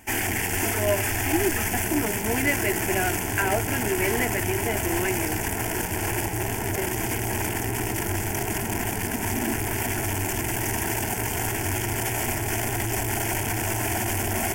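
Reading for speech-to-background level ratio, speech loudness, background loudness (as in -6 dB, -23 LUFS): -3.0 dB, -29.0 LUFS, -26.0 LUFS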